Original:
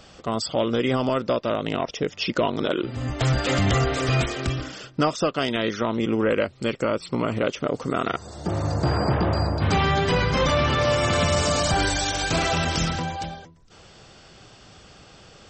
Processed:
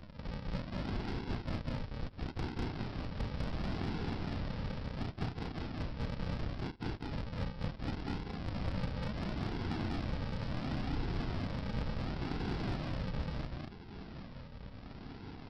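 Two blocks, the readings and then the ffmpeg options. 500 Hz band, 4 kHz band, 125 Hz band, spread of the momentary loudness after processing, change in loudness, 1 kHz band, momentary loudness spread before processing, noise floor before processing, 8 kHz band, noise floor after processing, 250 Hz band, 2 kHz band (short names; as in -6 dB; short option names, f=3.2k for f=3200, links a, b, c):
-21.5 dB, -20.0 dB, -12.0 dB, 9 LU, -16.0 dB, -19.5 dB, 8 LU, -50 dBFS, under -30 dB, -50 dBFS, -13.0 dB, -19.0 dB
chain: -filter_complex "[0:a]acrossover=split=3000[a][b];[b]acompressor=threshold=-35dB:ratio=4:attack=1:release=60[c];[a][c]amix=inputs=2:normalize=0,equalizer=f=125:t=o:w=1:g=-12,equalizer=f=1k:t=o:w=1:g=11,equalizer=f=4k:t=o:w=1:g=-3,acompressor=threshold=-32dB:ratio=16,afftfilt=real='hypot(re,im)*cos(2*PI*random(0))':imag='hypot(re,im)*sin(2*PI*random(1))':win_size=512:overlap=0.75,aresample=11025,acrusher=samples=25:mix=1:aa=0.000001:lfo=1:lforange=15:lforate=0.71,aresample=44100,asoftclip=type=tanh:threshold=-32dB,asplit=2[d][e];[e]aecho=0:1:198.3|230.3:0.891|0.708[f];[d][f]amix=inputs=2:normalize=0,volume=2.5dB"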